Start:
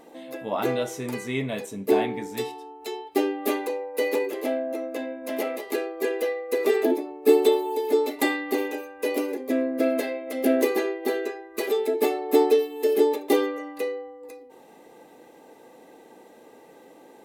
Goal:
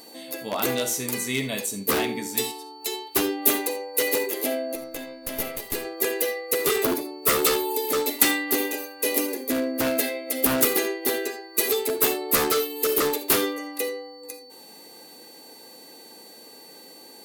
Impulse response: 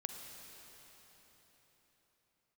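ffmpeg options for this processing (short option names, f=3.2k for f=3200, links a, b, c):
-filter_complex "[0:a]aeval=exprs='0.133*(abs(mod(val(0)/0.133+3,4)-2)-1)':c=same,aeval=exprs='val(0)+0.00141*sin(2*PI*4500*n/s)':c=same,crystalizer=i=7.5:c=0,asettb=1/sr,asplit=3[a][b][c];[a]atrim=end=4.754[d];[b]atrim=start=4.75:end=5.85,asetpts=PTS-STARTPTS,afade=t=in:d=0.004:c=qsin,afade=t=out:st=1.096:d=0.004:c=qsin,aeval=exprs='(tanh(5.62*val(0)+0.8)-tanh(0.8))/5.62':c=same[e];[c]atrim=start=5.846[f];[d][e]acrossfade=d=0.004:c1=hsin:c2=qsin[g];[g][f]acrossfade=d=0.004:c1=qsin:c2=hsin,equalizer=f=210:t=o:w=2.1:g=4.5[h];[1:a]atrim=start_sample=2205,atrim=end_sample=3969[i];[h][i]afir=irnorm=-1:irlink=0,volume=-2dB"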